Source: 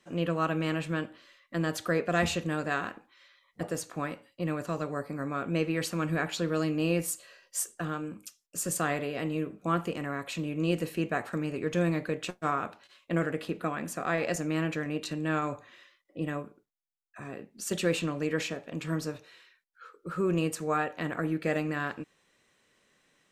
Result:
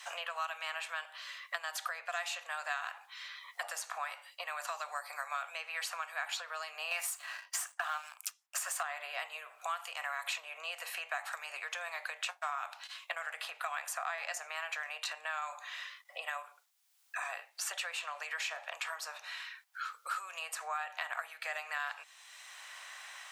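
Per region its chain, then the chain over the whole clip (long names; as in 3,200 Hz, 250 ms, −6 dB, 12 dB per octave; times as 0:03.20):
0:06.91–0:08.83: Butterworth high-pass 590 Hz 48 dB per octave + leveller curve on the samples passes 2
whole clip: downward compressor, threshold −35 dBFS; Butterworth high-pass 710 Hz 48 dB per octave; multiband upward and downward compressor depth 70%; level +5.5 dB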